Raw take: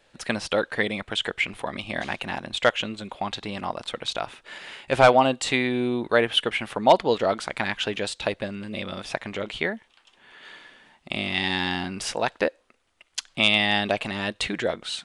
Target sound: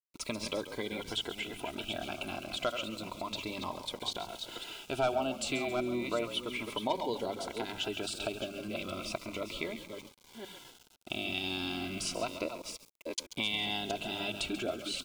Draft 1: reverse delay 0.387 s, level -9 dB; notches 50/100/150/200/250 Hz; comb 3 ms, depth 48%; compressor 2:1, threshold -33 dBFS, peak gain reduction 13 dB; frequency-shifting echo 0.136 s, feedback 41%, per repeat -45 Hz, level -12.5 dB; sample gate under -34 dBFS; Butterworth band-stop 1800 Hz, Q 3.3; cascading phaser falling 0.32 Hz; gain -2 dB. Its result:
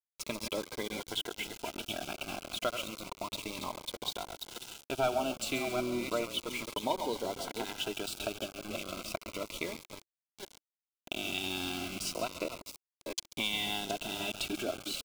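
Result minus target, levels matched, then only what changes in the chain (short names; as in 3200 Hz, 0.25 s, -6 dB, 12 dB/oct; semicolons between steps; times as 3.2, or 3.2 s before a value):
sample gate: distortion +14 dB
change: sample gate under -45.5 dBFS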